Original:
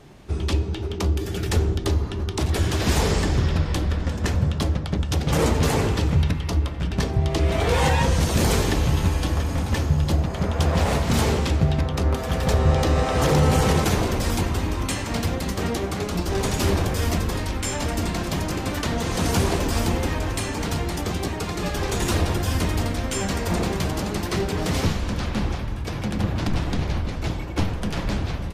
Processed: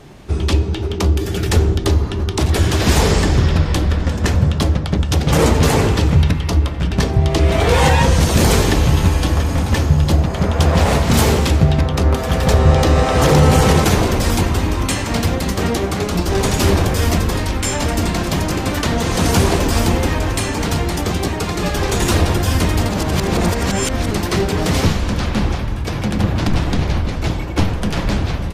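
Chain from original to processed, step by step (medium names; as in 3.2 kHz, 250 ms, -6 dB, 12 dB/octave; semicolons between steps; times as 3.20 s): 11.17–11.62 s: treble shelf 12 kHz +11.5 dB; 22.89–24.11 s: reverse; trim +7 dB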